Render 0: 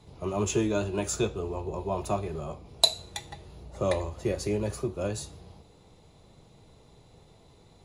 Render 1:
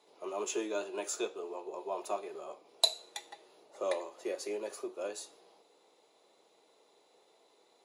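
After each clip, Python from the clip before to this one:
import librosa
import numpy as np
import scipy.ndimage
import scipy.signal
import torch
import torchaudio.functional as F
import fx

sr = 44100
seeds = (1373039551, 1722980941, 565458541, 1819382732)

y = scipy.signal.sosfilt(scipy.signal.butter(4, 360.0, 'highpass', fs=sr, output='sos'), x)
y = y * 10.0 ** (-5.5 / 20.0)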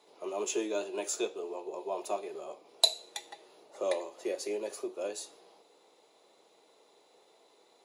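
y = fx.dynamic_eq(x, sr, hz=1300.0, q=1.5, threshold_db=-55.0, ratio=4.0, max_db=-6)
y = y * 10.0 ** (3.0 / 20.0)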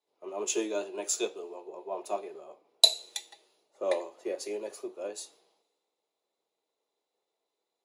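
y = fx.band_widen(x, sr, depth_pct=70)
y = y * 10.0 ** (-1.0 / 20.0)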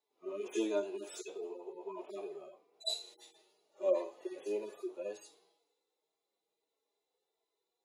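y = fx.hpss_only(x, sr, part='harmonic')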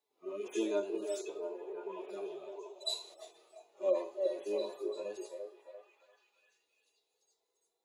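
y = fx.echo_stepped(x, sr, ms=343, hz=490.0, octaves=0.7, feedback_pct=70, wet_db=-3.0)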